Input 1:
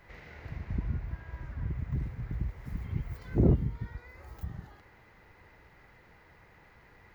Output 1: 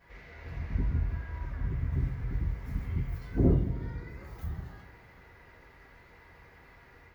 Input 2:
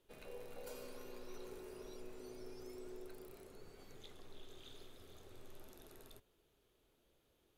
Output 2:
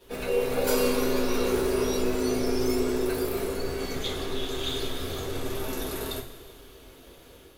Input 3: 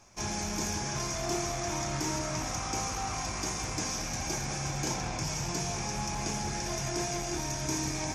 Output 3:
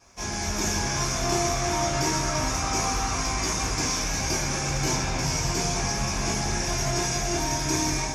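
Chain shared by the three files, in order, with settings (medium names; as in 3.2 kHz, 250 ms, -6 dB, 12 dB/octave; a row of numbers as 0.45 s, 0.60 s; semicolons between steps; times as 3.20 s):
vibrato 2 Hz 12 cents; two-slope reverb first 0.24 s, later 1.9 s, from -18 dB, DRR -8 dB; level rider gain up to 4 dB; peak normalisation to -12 dBFS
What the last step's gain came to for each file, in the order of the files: -9.5 dB, +14.0 dB, -4.5 dB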